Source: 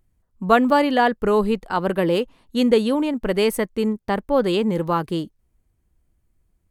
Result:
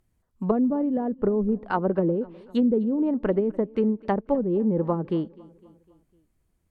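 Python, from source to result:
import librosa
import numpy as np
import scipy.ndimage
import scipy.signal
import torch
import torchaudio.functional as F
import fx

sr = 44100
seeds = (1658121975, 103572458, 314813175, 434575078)

y = fx.env_lowpass_down(x, sr, base_hz=300.0, full_db=-15.5)
y = fx.low_shelf(y, sr, hz=72.0, db=-8.5)
y = fx.echo_feedback(y, sr, ms=253, feedback_pct=54, wet_db=-23)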